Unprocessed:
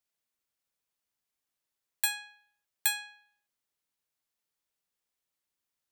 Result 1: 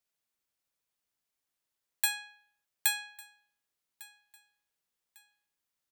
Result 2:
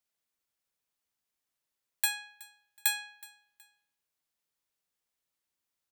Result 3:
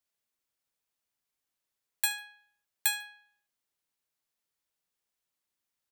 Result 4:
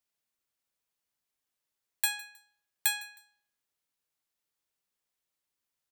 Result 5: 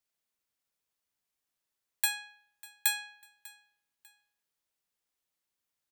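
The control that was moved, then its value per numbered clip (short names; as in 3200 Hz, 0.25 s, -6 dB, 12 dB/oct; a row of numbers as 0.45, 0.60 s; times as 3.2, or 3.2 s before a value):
feedback echo, time: 1151, 371, 74, 157, 596 ms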